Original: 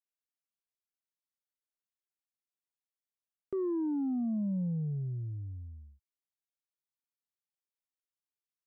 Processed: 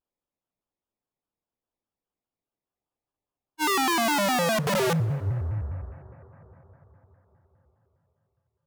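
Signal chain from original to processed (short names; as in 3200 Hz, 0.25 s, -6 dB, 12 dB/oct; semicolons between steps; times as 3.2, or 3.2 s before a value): Wiener smoothing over 25 samples; notches 60/120/180 Hz; in parallel at +1 dB: compressor 6:1, threshold -47 dBFS, peak gain reduction 15.5 dB; on the sum: wrapped overs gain 29.5 dB; on a send at -16 dB: reverb RT60 4.9 s, pre-delay 17 ms; on the sum: spectral freeze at 2.7, 0.90 s; shaped vibrato square 4.9 Hz, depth 250 cents; gain +8.5 dB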